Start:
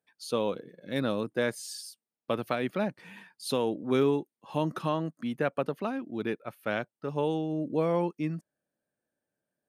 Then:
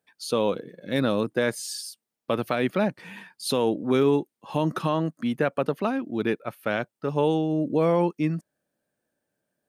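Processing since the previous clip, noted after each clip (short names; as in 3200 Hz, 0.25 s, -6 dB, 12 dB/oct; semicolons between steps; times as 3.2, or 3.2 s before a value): limiter -18.5 dBFS, peak gain reduction 3.5 dB; gain +6.5 dB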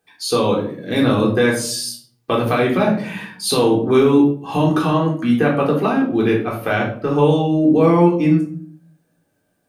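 in parallel at +1 dB: compressor, threshold -30 dBFS, peak gain reduction 13 dB; on the sum: shoebox room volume 520 m³, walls furnished, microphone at 3.7 m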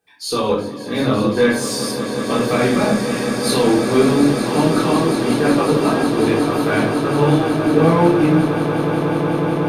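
chorus voices 4, 0.46 Hz, delay 22 ms, depth 2.4 ms; swelling echo 0.183 s, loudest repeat 8, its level -12 dB; added harmonics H 6 -29 dB, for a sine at -2.5 dBFS; gain +1.5 dB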